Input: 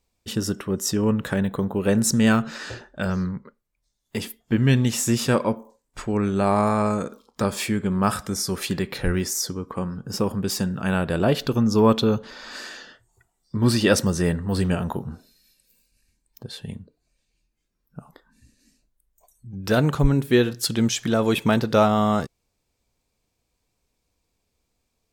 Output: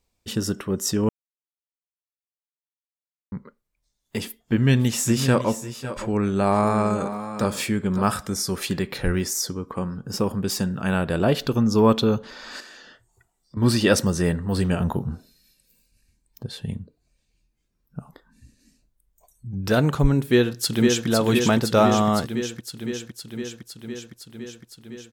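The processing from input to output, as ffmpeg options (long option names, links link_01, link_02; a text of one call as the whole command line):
ffmpeg -i in.wav -filter_complex "[0:a]asettb=1/sr,asplit=3[link_01][link_02][link_03];[link_01]atrim=end=4.254[link_04];[link_02]atrim=start=4.25:end=8.05,asetpts=PTS-STARTPTS,afade=type=in:duration=0.004:curve=qsin,afade=type=out:start_time=3.796:duration=0.004:curve=qsin,aecho=1:1:545|560:0.15|0.237,atrim=end_sample=167580[link_05];[link_03]atrim=start=8.046[link_06];[link_04][link_05]acrossfade=duration=0.004:curve1=hsin:curve2=qsin[link_07];[link_07][link_06]acrossfade=duration=0.004:curve1=qsin:curve2=hsin,asettb=1/sr,asplit=3[link_08][link_09][link_10];[link_08]atrim=end=12.604[link_11];[link_09]atrim=start=12.6:end=13.57,asetpts=PTS-STARTPTS,afade=type=in:duration=0.004:curve=qsin,afade=type=out:start_time=0.966:duration=0.004:curve=qsin,acompressor=threshold=-43dB:ratio=3:attack=3.2:release=140:knee=1:detection=peak[link_12];[link_10]atrim=start=13.566[link_13];[link_11][link_12]acrossfade=duration=0.004:curve1=hsin:curve2=qsin[link_14];[link_14][link_13]acrossfade=duration=0.004:curve1=qsin:curve2=hsin,asettb=1/sr,asplit=3[link_15][link_16][link_17];[link_15]atrim=end=14.804[link_18];[link_16]atrim=start=14.8:end=19.69,asetpts=PTS-STARTPTS,afade=type=in:duration=0.004:curve=qsin,afade=type=out:start_time=4.886:duration=0.004:curve=qsin,equalizer=frequency=84:width_type=o:width=3:gain=6[link_19];[link_17]atrim=start=19.686[link_20];[link_18][link_19]acrossfade=duration=0.004:curve1=hsin:curve2=qsin[link_21];[link_21][link_20]acrossfade=duration=0.004:curve1=qsin:curve2=hsin,asplit=2[link_22][link_23];[link_23]afade=type=in:start_time=20.21:duration=0.01,afade=type=out:start_time=21.07:duration=0.01,aecho=0:1:510|1020|1530|2040|2550|3060|3570|4080|4590|5100|5610|6120:0.630957|0.473218|0.354914|0.266185|0.199639|0.149729|0.112297|0.0842226|0.063167|0.0473752|0.0355314|0.0266486[link_24];[link_22][link_24]amix=inputs=2:normalize=0,asplit=3[link_25][link_26][link_27];[link_25]atrim=end=1.09,asetpts=PTS-STARTPTS,afade=type=out:start_time=1.086:duration=0.004:curve=hsin[link_28];[link_26]atrim=start=1.09:end=3.32,asetpts=PTS-STARTPTS,volume=0[link_29];[link_27]atrim=start=3.32,asetpts=PTS-STARTPTS,afade=type=in:duration=0.004:curve=hsin[link_30];[link_28][link_29][link_30]concat=n=3:v=0:a=1" out.wav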